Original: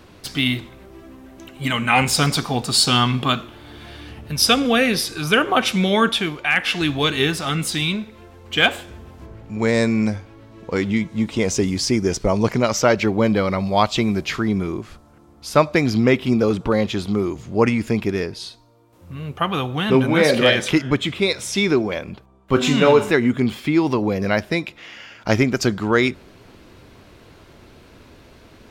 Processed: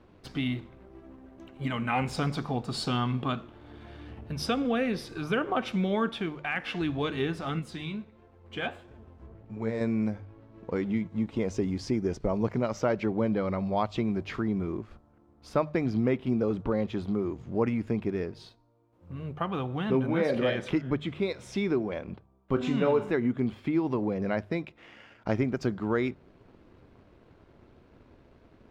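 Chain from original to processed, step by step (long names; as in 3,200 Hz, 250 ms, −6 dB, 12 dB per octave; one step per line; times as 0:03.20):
mu-law and A-law mismatch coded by A
low-pass filter 1,000 Hz 6 dB per octave
mains-hum notches 50/100/150 Hz
downward compressor 1.5 to 1, threshold −30 dBFS, peak gain reduction 7 dB
0:07.59–0:09.81: flanger 1.5 Hz, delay 6.9 ms, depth 7.8 ms, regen +42%
level −3 dB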